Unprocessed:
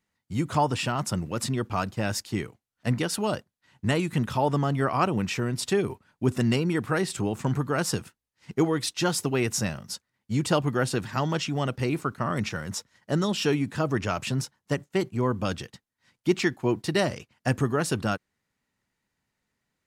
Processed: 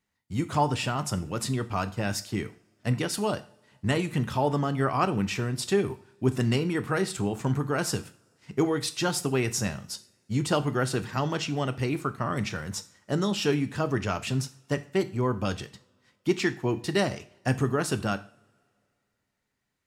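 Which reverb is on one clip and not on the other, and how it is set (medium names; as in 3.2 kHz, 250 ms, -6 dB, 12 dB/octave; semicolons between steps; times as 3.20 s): two-slope reverb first 0.41 s, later 2.3 s, from -27 dB, DRR 10 dB; trim -1.5 dB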